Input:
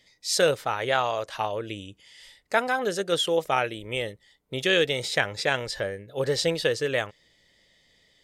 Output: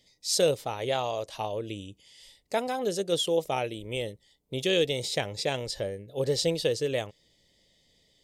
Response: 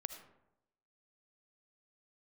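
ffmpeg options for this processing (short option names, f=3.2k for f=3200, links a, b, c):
-af "equalizer=f=1.5k:w=1.2:g=-15"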